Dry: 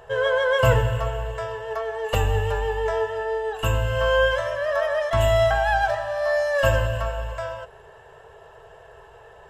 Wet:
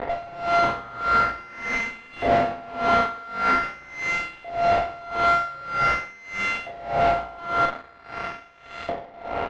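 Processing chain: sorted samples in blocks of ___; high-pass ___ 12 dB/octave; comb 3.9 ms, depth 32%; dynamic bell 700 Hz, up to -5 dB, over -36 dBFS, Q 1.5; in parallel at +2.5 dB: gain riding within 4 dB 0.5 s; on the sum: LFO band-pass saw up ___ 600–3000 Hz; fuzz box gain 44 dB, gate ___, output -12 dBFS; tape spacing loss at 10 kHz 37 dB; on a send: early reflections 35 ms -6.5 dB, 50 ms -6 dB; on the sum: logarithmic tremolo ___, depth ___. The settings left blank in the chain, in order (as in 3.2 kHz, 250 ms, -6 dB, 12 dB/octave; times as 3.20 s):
64 samples, 46 Hz, 0.45 Hz, -44 dBFS, 1.7 Hz, 22 dB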